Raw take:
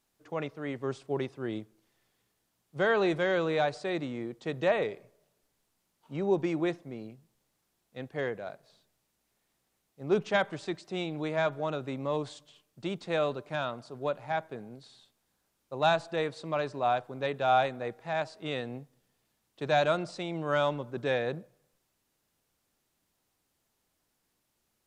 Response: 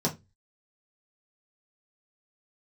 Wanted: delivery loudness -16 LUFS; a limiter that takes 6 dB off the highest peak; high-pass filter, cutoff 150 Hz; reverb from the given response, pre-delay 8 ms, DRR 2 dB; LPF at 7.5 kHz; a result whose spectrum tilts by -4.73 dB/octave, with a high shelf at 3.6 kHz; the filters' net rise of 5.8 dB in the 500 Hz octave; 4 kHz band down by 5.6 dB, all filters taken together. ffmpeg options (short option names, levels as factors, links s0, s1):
-filter_complex "[0:a]highpass=150,lowpass=7500,equalizer=f=500:t=o:g=7.5,highshelf=f=3600:g=-6,equalizer=f=4000:t=o:g=-3,alimiter=limit=0.133:level=0:latency=1,asplit=2[s0][s1];[1:a]atrim=start_sample=2205,adelay=8[s2];[s1][s2]afir=irnorm=-1:irlink=0,volume=0.299[s3];[s0][s3]amix=inputs=2:normalize=0,volume=2.51"